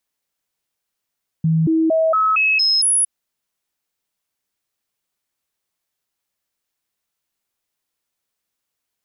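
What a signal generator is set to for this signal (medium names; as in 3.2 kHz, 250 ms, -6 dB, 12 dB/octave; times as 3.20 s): stepped sine 161 Hz up, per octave 1, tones 7, 0.23 s, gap 0.00 s -13 dBFS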